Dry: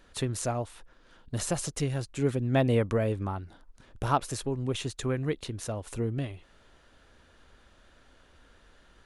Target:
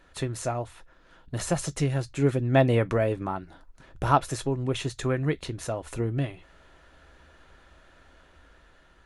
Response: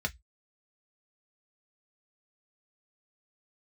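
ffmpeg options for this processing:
-filter_complex "[0:a]dynaudnorm=f=550:g=5:m=1.41,asplit=2[s0][s1];[1:a]atrim=start_sample=2205,highshelf=f=3400:g=10.5[s2];[s1][s2]afir=irnorm=-1:irlink=0,volume=0.211[s3];[s0][s3]amix=inputs=2:normalize=0"

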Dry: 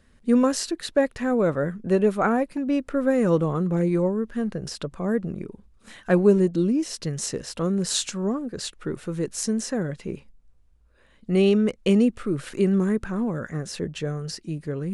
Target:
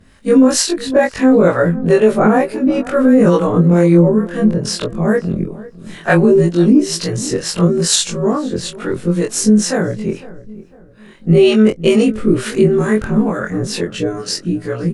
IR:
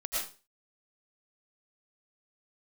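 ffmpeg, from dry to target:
-filter_complex "[0:a]afftfilt=real='re':imag='-im':win_size=2048:overlap=0.75,acrossover=split=520[s0][s1];[s0]aeval=exprs='val(0)*(1-0.7/2+0.7/2*cos(2*PI*2.2*n/s))':c=same[s2];[s1]aeval=exprs='val(0)*(1-0.7/2-0.7/2*cos(2*PI*2.2*n/s))':c=same[s3];[s2][s3]amix=inputs=2:normalize=0,asplit=2[s4][s5];[s5]adelay=503,lowpass=f=1500:p=1,volume=0.126,asplit=2[s6][s7];[s7]adelay=503,lowpass=f=1500:p=1,volume=0.38,asplit=2[s8][s9];[s9]adelay=503,lowpass=f=1500:p=1,volume=0.38[s10];[s4][s6][s8][s10]amix=inputs=4:normalize=0,alimiter=level_in=10.6:limit=0.891:release=50:level=0:latency=1,volume=0.891"

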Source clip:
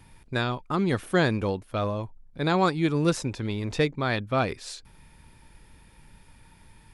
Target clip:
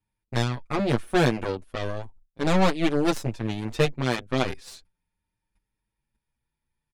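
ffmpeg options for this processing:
-filter_complex "[0:a]agate=range=0.0631:threshold=0.00562:ratio=16:detection=peak,aeval=exprs='0.335*(cos(1*acos(clip(val(0)/0.335,-1,1)))-cos(1*PI/2))+0.0531*(cos(3*acos(clip(val(0)/0.335,-1,1)))-cos(3*PI/2))+0.0376*(cos(4*acos(clip(val(0)/0.335,-1,1)))-cos(4*PI/2))+0.0106*(cos(7*acos(clip(val(0)/0.335,-1,1)))-cos(7*PI/2))+0.0133*(cos(8*acos(clip(val(0)/0.335,-1,1)))-cos(8*PI/2))':c=same,asplit=2[s0][s1];[s1]asoftclip=type=hard:threshold=0.126,volume=0.708[s2];[s0][s2]amix=inputs=2:normalize=0,asplit=2[s3][s4];[s4]adelay=7.1,afreqshift=0.37[s5];[s3][s5]amix=inputs=2:normalize=1,volume=1.41"

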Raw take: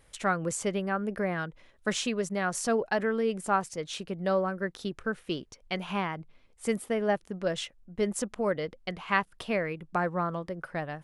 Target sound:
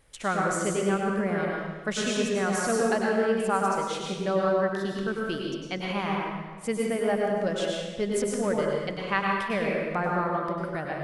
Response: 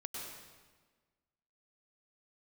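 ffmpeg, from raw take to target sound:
-filter_complex "[1:a]atrim=start_sample=2205[s0];[0:a][s0]afir=irnorm=-1:irlink=0,volume=1.58"

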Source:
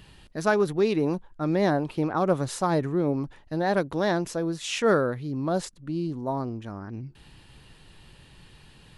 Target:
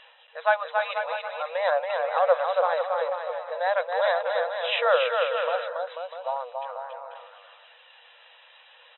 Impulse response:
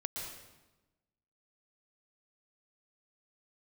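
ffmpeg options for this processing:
-af "aphaser=in_gain=1:out_gain=1:delay=3.1:decay=0.32:speed=0.42:type=sinusoidal,afftfilt=real='re*between(b*sr/4096,470,4000)':imag='im*between(b*sr/4096,470,4000)':win_size=4096:overlap=0.75,aecho=1:1:280|490|647.5|765.6|854.2:0.631|0.398|0.251|0.158|0.1,volume=1.26"

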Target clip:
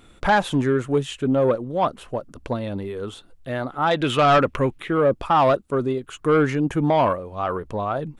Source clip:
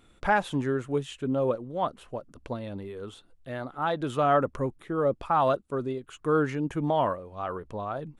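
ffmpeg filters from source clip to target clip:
-filter_complex "[0:a]asettb=1/sr,asplit=3[s0][s1][s2];[s0]atrim=end=3.914[s3];[s1]atrim=start=3.91:end=4.98,asetpts=PTS-STARTPTS,afade=t=in:d=0.004:c=qsin,afade=t=out:st=1.066:d=0.004:c=qsin,equalizer=f=2600:w=1.1:g=12[s4];[s2]atrim=start=4.976[s5];[s3][s4]acrossfade=d=0.004:c1=hsin:c2=qsin[s6];[s6][s5]acrossfade=d=0.004:c1=qsin:c2=hsin,asoftclip=type=tanh:threshold=0.119,volume=2.66"

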